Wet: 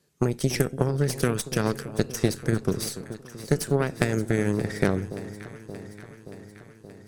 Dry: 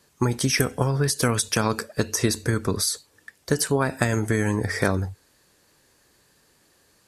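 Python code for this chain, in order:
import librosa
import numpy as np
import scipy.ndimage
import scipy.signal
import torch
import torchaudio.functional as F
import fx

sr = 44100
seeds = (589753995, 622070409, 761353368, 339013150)

y = fx.cheby_harmonics(x, sr, harmonics=(3, 6), levels_db=(-13, -23), full_scale_db=-3.0)
y = fx.graphic_eq_15(y, sr, hz=(160, 400, 1000), db=(9, 6, -5))
y = fx.echo_alternate(y, sr, ms=288, hz=960.0, feedback_pct=81, wet_db=-13.0)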